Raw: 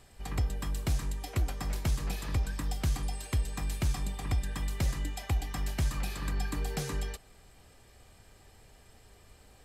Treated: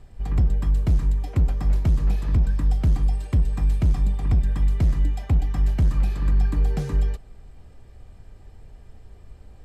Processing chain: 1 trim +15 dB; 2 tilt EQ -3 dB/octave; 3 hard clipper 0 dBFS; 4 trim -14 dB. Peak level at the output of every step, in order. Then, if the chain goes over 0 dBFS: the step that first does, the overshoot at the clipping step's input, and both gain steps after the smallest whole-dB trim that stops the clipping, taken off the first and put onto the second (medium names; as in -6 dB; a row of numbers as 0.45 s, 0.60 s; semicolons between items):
-6.0 dBFS, +6.5 dBFS, 0.0 dBFS, -14.0 dBFS; step 2, 6.5 dB; step 1 +8 dB, step 4 -7 dB